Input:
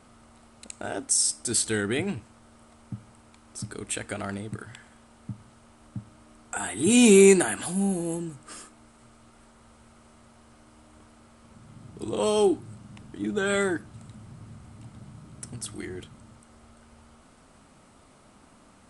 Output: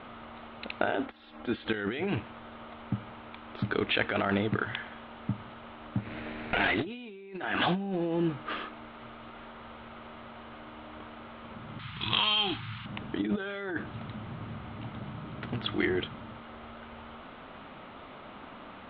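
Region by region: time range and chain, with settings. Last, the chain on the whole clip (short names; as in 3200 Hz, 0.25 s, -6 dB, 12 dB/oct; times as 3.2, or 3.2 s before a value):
1.06–1.74 compressor 12:1, threshold -31 dBFS + air absorption 300 m + comb 3.7 ms, depth 42%
5.98–6.85 minimum comb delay 0.46 ms + upward compressor, threshold -37 dBFS
11.79–12.86 EQ curve 150 Hz 0 dB, 250 Hz -13 dB, 500 Hz -27 dB, 950 Hz -1 dB, 1900 Hz +8 dB, 7600 Hz +15 dB + compressor 8:1, threshold -29 dBFS
whole clip: steep low-pass 3700 Hz 72 dB/oct; low shelf 230 Hz -11 dB; negative-ratio compressor -38 dBFS, ratio -1; gain +5.5 dB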